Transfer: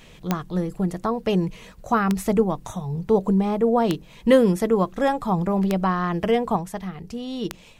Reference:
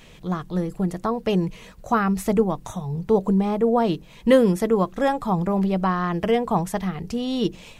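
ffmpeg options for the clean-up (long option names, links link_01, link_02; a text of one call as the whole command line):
ffmpeg -i in.wav -af "adeclick=threshold=4,asetnsamples=nb_out_samples=441:pad=0,asendcmd='6.56 volume volume 5.5dB',volume=0dB" out.wav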